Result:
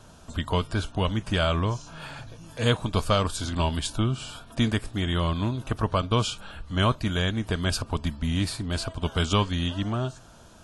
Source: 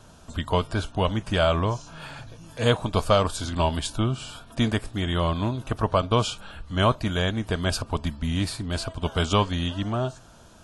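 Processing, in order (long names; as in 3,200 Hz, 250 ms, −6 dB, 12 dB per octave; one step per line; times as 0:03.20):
dynamic equaliser 680 Hz, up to −6 dB, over −35 dBFS, Q 1.1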